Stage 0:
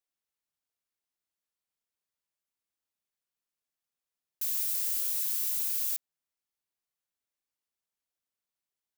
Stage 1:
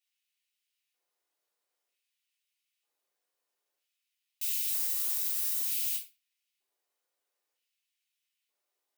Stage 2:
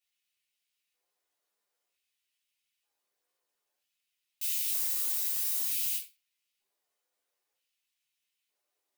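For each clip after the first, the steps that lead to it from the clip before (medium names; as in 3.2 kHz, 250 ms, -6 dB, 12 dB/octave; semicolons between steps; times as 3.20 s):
LFO high-pass square 0.53 Hz 490–2600 Hz; peak limiter -26 dBFS, peak gain reduction 7 dB; simulated room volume 290 m³, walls furnished, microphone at 3.4 m
chorus voices 2, 0.75 Hz, delay 13 ms, depth 3.5 ms; trim +4 dB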